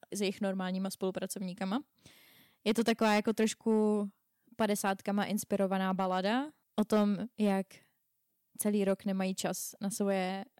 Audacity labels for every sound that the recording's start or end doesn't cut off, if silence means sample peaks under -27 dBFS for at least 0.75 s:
2.670000	7.610000	sound